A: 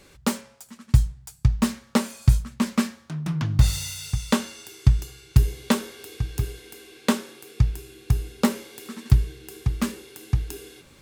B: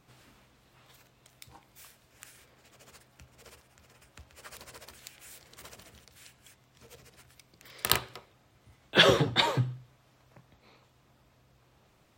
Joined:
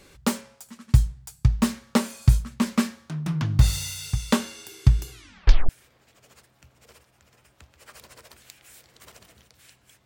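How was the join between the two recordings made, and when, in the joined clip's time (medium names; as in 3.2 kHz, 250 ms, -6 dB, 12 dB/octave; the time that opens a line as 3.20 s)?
A
5.11 s: tape stop 0.58 s
5.69 s: go over to B from 2.26 s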